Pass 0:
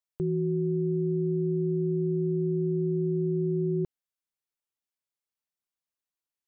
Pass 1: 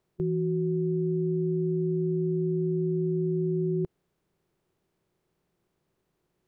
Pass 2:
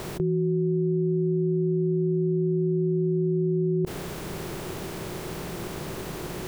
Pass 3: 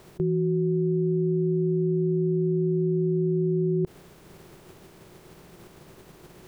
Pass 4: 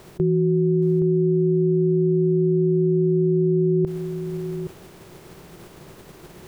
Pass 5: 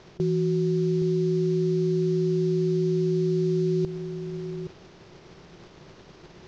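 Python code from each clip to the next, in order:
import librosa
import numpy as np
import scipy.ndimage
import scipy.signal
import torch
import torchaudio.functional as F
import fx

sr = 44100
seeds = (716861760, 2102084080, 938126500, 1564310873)

y1 = fx.bin_compress(x, sr, power=0.6)
y2 = fx.env_flatten(y1, sr, amount_pct=100)
y2 = y2 * 10.0 ** (2.5 / 20.0)
y3 = fx.upward_expand(y2, sr, threshold_db=-35.0, expansion=2.5)
y3 = y3 * 10.0 ** (1.5 / 20.0)
y4 = y3 + 10.0 ** (-9.5 / 20.0) * np.pad(y3, (int(821 * sr / 1000.0), 0))[:len(y3)]
y4 = y4 * 10.0 ** (5.0 / 20.0)
y5 = fx.cvsd(y4, sr, bps=32000)
y5 = y5 * 10.0 ** (-4.5 / 20.0)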